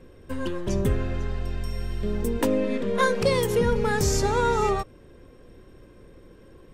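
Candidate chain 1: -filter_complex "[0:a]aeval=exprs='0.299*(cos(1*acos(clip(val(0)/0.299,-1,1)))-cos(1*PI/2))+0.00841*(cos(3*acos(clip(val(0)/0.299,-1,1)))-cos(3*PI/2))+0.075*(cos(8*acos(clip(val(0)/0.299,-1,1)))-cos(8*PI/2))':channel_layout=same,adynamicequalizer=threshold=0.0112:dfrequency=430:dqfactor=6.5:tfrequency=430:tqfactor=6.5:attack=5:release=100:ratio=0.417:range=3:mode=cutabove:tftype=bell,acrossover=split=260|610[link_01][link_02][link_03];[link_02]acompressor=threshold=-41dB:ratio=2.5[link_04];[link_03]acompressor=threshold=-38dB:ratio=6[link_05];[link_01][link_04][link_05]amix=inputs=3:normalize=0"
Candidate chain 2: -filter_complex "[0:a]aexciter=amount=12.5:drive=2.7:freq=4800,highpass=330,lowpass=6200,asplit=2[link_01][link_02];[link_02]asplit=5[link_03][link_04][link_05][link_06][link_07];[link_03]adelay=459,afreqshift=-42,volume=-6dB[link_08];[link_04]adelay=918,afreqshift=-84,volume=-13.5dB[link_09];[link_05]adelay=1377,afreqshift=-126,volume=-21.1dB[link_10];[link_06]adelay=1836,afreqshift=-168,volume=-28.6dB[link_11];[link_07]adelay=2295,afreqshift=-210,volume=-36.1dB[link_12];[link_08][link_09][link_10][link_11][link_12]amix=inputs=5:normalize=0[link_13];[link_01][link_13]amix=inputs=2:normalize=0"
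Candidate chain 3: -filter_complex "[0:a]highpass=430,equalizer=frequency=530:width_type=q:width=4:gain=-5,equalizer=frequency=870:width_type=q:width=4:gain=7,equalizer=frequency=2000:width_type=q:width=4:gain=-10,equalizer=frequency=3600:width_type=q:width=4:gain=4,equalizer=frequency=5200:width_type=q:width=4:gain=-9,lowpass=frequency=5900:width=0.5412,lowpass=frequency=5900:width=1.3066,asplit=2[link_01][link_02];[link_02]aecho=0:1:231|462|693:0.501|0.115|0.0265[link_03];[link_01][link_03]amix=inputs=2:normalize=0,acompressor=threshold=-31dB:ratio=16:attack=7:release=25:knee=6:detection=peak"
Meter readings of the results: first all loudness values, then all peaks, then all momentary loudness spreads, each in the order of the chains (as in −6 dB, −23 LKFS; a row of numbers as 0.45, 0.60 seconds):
−29.5, −21.5, −34.5 LKFS; −11.0, −4.0, −19.5 dBFS; 7, 19, 10 LU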